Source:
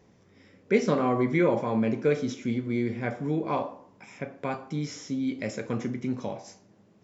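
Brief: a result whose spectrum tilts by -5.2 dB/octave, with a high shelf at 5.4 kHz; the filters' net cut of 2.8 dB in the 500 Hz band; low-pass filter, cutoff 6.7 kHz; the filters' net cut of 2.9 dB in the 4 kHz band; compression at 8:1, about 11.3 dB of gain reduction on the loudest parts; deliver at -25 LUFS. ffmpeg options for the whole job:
-af "lowpass=6700,equalizer=f=500:t=o:g=-3.5,equalizer=f=4000:t=o:g=-5,highshelf=f=5400:g=4,acompressor=threshold=0.0282:ratio=8,volume=3.98"

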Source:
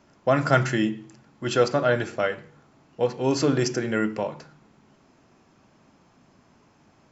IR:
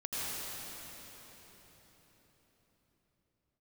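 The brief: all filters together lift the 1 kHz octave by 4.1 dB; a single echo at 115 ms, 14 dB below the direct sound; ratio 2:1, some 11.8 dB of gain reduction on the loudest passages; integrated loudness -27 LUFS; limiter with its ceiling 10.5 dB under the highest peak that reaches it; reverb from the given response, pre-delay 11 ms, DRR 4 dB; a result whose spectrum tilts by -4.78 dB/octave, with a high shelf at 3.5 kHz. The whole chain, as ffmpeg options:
-filter_complex "[0:a]equalizer=f=1000:t=o:g=5.5,highshelf=f=3500:g=5,acompressor=threshold=0.02:ratio=2,alimiter=limit=0.0631:level=0:latency=1,aecho=1:1:115:0.2,asplit=2[s0][s1];[1:a]atrim=start_sample=2205,adelay=11[s2];[s1][s2]afir=irnorm=-1:irlink=0,volume=0.335[s3];[s0][s3]amix=inputs=2:normalize=0,volume=2.51"

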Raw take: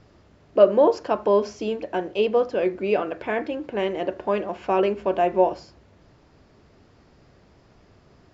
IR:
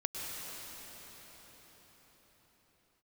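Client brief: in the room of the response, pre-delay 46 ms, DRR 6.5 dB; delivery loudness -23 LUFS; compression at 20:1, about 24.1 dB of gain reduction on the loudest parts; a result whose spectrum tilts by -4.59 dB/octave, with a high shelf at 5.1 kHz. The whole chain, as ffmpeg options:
-filter_complex "[0:a]highshelf=f=5100:g=-7,acompressor=threshold=0.0224:ratio=20,asplit=2[s0][s1];[1:a]atrim=start_sample=2205,adelay=46[s2];[s1][s2]afir=irnorm=-1:irlink=0,volume=0.299[s3];[s0][s3]amix=inputs=2:normalize=0,volume=5.62"

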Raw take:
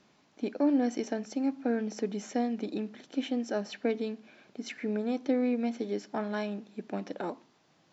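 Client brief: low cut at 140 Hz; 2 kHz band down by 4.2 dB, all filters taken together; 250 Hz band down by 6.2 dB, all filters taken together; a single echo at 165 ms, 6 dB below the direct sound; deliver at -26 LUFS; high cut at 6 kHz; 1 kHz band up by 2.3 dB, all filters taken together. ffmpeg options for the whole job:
-af "highpass=140,lowpass=6000,equalizer=f=250:t=o:g=-6.5,equalizer=f=1000:t=o:g=5.5,equalizer=f=2000:t=o:g=-7.5,aecho=1:1:165:0.501,volume=2.82"

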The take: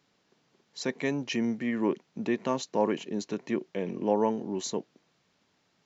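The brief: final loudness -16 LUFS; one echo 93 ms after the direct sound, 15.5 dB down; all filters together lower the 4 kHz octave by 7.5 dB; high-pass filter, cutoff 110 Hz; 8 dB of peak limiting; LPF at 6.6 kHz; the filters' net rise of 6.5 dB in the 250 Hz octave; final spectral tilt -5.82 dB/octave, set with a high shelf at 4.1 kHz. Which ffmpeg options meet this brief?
-af "highpass=110,lowpass=6600,equalizer=f=250:t=o:g=8,equalizer=f=4000:t=o:g=-5.5,highshelf=f=4100:g=-7,alimiter=limit=0.126:level=0:latency=1,aecho=1:1:93:0.168,volume=4.47"

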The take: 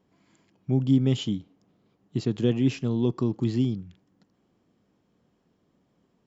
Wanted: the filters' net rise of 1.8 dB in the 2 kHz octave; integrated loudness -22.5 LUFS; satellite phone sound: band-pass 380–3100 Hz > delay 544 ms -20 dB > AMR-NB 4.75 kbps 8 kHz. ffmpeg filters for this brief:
-af "highpass=380,lowpass=3100,equalizer=f=2000:t=o:g=4,aecho=1:1:544:0.1,volume=3.98" -ar 8000 -c:a libopencore_amrnb -b:a 4750

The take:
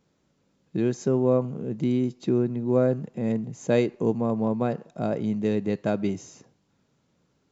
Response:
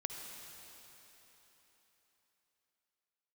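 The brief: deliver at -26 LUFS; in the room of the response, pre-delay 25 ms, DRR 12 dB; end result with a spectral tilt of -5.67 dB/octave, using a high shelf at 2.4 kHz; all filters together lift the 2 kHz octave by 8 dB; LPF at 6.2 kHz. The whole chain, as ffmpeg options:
-filter_complex "[0:a]lowpass=6200,equalizer=f=2000:t=o:g=7.5,highshelf=f=2400:g=5.5,asplit=2[s0][s1];[1:a]atrim=start_sample=2205,adelay=25[s2];[s1][s2]afir=irnorm=-1:irlink=0,volume=0.251[s3];[s0][s3]amix=inputs=2:normalize=0,volume=0.944"

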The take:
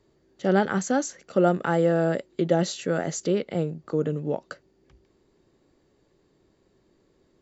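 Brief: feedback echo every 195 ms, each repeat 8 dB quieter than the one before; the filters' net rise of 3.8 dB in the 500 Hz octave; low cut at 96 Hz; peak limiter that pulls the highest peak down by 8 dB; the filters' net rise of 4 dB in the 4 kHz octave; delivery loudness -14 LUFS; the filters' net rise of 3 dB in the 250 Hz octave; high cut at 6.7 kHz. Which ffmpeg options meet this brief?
-af "highpass=96,lowpass=6700,equalizer=f=250:t=o:g=3.5,equalizer=f=500:t=o:g=3.5,equalizer=f=4000:t=o:g=5.5,alimiter=limit=0.224:level=0:latency=1,aecho=1:1:195|390|585|780|975:0.398|0.159|0.0637|0.0255|0.0102,volume=3.16"

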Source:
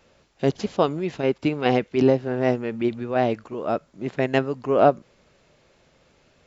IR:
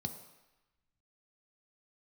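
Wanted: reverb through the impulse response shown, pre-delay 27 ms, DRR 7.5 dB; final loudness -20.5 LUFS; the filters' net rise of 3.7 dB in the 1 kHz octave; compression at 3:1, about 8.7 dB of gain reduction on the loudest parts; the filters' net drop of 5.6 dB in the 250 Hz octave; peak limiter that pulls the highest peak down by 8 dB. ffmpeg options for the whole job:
-filter_complex "[0:a]equalizer=f=250:t=o:g=-7.5,equalizer=f=1000:t=o:g=6.5,acompressor=threshold=0.0891:ratio=3,alimiter=limit=0.178:level=0:latency=1,asplit=2[s0][s1];[1:a]atrim=start_sample=2205,adelay=27[s2];[s1][s2]afir=irnorm=-1:irlink=0,volume=0.447[s3];[s0][s3]amix=inputs=2:normalize=0,volume=2.24"

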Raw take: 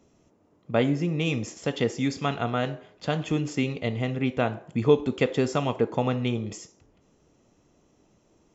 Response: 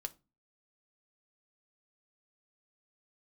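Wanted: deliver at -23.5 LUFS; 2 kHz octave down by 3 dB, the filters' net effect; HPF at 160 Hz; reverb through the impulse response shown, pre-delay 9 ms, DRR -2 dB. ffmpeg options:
-filter_complex "[0:a]highpass=160,equalizer=f=2000:t=o:g=-4,asplit=2[s0][s1];[1:a]atrim=start_sample=2205,adelay=9[s2];[s1][s2]afir=irnorm=-1:irlink=0,volume=1.58[s3];[s0][s3]amix=inputs=2:normalize=0,volume=1.12"

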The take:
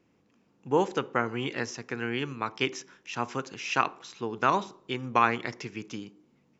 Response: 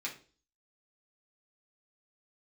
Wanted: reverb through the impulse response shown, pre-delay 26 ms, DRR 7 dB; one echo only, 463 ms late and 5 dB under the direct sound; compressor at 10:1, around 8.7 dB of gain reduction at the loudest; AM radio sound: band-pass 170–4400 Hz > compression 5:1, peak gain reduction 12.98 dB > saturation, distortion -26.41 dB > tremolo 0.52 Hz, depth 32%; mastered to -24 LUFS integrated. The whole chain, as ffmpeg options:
-filter_complex "[0:a]acompressor=threshold=0.0501:ratio=10,aecho=1:1:463:0.562,asplit=2[s0][s1];[1:a]atrim=start_sample=2205,adelay=26[s2];[s1][s2]afir=irnorm=-1:irlink=0,volume=0.355[s3];[s0][s3]amix=inputs=2:normalize=0,highpass=170,lowpass=4400,acompressor=threshold=0.0126:ratio=5,asoftclip=threshold=0.0668,tremolo=f=0.52:d=0.32,volume=9.44"

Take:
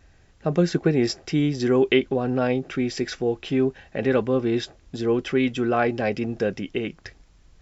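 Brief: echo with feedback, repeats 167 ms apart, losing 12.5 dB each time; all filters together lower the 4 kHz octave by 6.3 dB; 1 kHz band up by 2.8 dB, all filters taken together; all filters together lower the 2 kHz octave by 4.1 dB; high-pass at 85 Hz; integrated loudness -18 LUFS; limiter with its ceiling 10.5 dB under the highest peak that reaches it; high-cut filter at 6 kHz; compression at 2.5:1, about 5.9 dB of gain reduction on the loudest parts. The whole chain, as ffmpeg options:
-af "highpass=85,lowpass=6000,equalizer=f=1000:t=o:g=6,equalizer=f=2000:t=o:g=-6,equalizer=f=4000:t=o:g=-6,acompressor=threshold=0.0708:ratio=2.5,alimiter=limit=0.0841:level=0:latency=1,aecho=1:1:167|334|501:0.237|0.0569|0.0137,volume=4.73"

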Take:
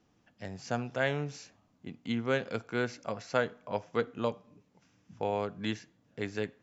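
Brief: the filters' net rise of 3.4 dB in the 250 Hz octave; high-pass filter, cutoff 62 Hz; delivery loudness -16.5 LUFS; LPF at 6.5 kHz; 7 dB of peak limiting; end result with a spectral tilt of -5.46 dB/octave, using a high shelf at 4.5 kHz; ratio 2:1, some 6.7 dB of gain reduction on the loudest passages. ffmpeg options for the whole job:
-af "highpass=62,lowpass=6500,equalizer=f=250:t=o:g=4,highshelf=f=4500:g=-4,acompressor=threshold=0.0178:ratio=2,volume=15.8,alimiter=limit=0.75:level=0:latency=1"

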